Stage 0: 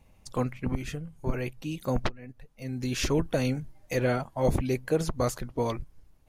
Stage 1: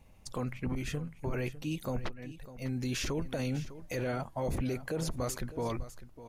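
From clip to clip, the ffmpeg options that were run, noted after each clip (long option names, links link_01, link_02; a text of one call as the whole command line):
ffmpeg -i in.wav -af "alimiter=level_in=2dB:limit=-24dB:level=0:latency=1:release=21,volume=-2dB,aecho=1:1:602:0.178" out.wav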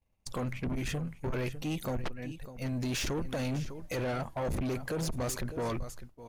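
ffmpeg -i in.wav -af "agate=range=-33dB:threshold=-43dB:ratio=3:detection=peak,asoftclip=type=tanh:threshold=-34.5dB,volume=5.5dB" out.wav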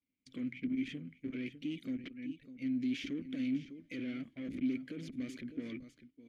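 ffmpeg -i in.wav -filter_complex "[0:a]asplit=3[link_01][link_02][link_03];[link_01]bandpass=frequency=270:width_type=q:width=8,volume=0dB[link_04];[link_02]bandpass=frequency=2290:width_type=q:width=8,volume=-6dB[link_05];[link_03]bandpass=frequency=3010:width_type=q:width=8,volume=-9dB[link_06];[link_04][link_05][link_06]amix=inputs=3:normalize=0,volume=5dB" out.wav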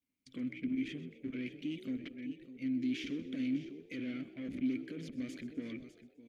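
ffmpeg -i in.wav -filter_complex "[0:a]asplit=5[link_01][link_02][link_03][link_04][link_05];[link_02]adelay=127,afreqshift=64,volume=-16dB[link_06];[link_03]adelay=254,afreqshift=128,volume=-23.3dB[link_07];[link_04]adelay=381,afreqshift=192,volume=-30.7dB[link_08];[link_05]adelay=508,afreqshift=256,volume=-38dB[link_09];[link_01][link_06][link_07][link_08][link_09]amix=inputs=5:normalize=0" out.wav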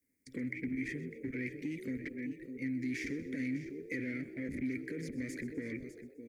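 ffmpeg -i in.wav -filter_complex "[0:a]firequalizer=gain_entry='entry(130,0);entry(190,-3);entry(450,6);entry(710,-11);entry(1200,-14);entry(1900,7);entry(3000,-21);entry(4700,-5);entry(8600,2)':delay=0.05:min_phase=1,acrossover=split=160|700|3200[link_01][link_02][link_03][link_04];[link_02]acompressor=threshold=-48dB:ratio=6[link_05];[link_01][link_05][link_03][link_04]amix=inputs=4:normalize=0,volume=7.5dB" out.wav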